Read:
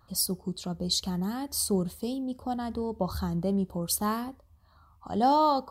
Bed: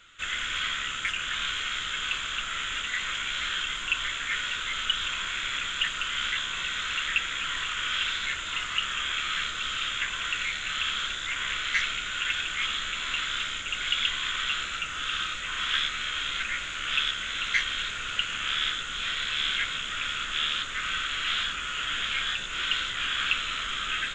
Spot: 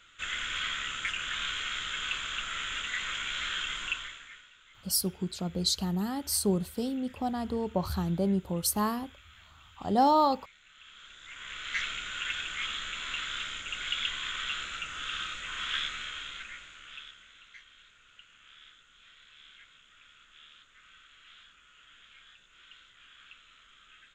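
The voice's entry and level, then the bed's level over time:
4.75 s, 0.0 dB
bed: 3.86 s -3.5 dB
4.51 s -27 dB
10.73 s -27 dB
11.81 s -5.5 dB
15.91 s -5.5 dB
17.57 s -27 dB

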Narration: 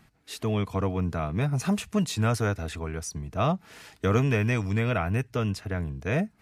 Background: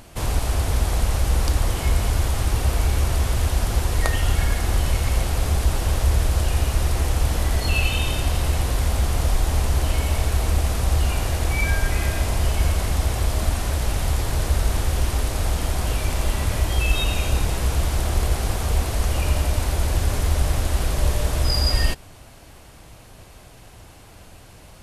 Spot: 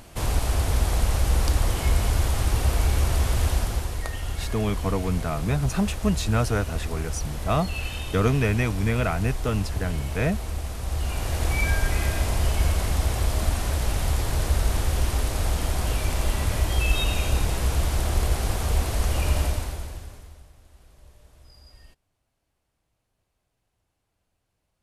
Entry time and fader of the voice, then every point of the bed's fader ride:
4.10 s, +1.5 dB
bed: 3.52 s -1.5 dB
4.04 s -10 dB
10.78 s -10 dB
11.45 s -2 dB
19.45 s -2 dB
20.53 s -31.5 dB

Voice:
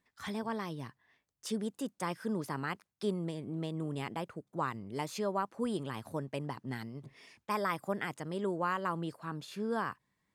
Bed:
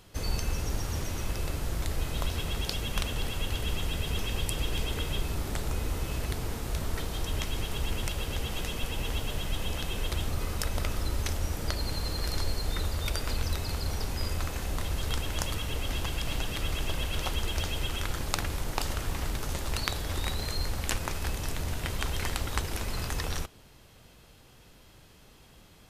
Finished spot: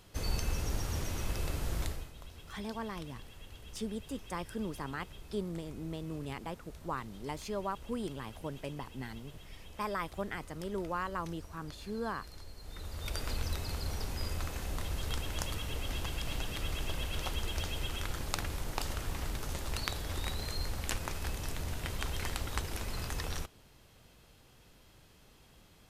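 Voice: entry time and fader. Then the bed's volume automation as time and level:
2.30 s, -3.0 dB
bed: 1.85 s -3 dB
2.13 s -19 dB
12.55 s -19 dB
13.19 s -5 dB

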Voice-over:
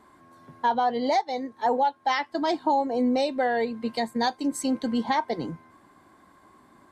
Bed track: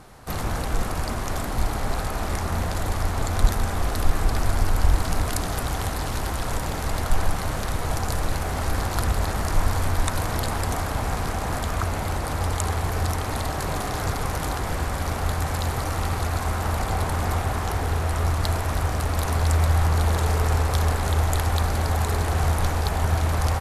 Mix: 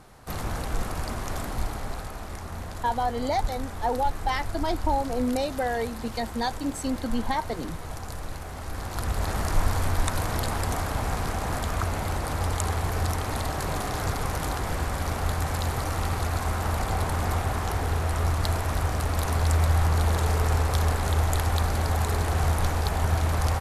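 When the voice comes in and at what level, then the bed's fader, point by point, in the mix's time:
2.20 s, -3.0 dB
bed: 1.47 s -4 dB
2.26 s -10.5 dB
8.66 s -10.5 dB
9.34 s -2 dB

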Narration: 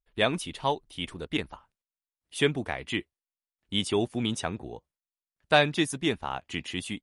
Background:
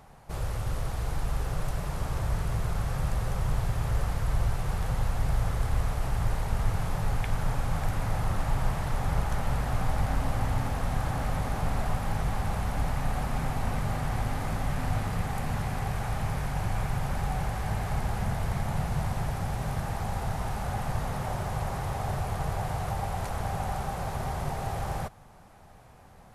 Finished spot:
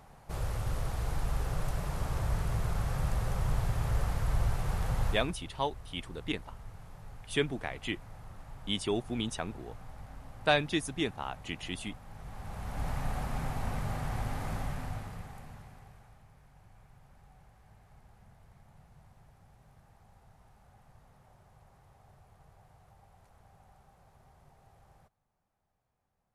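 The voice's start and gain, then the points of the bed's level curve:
4.95 s, -5.0 dB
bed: 5.11 s -2.5 dB
5.36 s -20 dB
12.07 s -20 dB
12.9 s -5 dB
14.59 s -5 dB
16.27 s -29 dB

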